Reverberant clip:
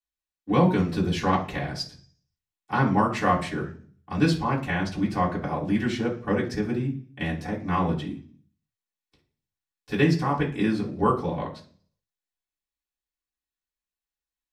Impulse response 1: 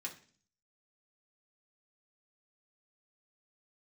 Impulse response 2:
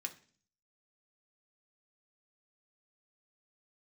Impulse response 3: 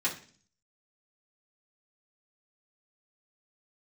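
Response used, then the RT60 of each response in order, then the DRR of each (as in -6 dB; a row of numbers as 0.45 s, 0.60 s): 3; 0.45 s, 0.45 s, 0.45 s; -2.5 dB, 3.0 dB, -8.0 dB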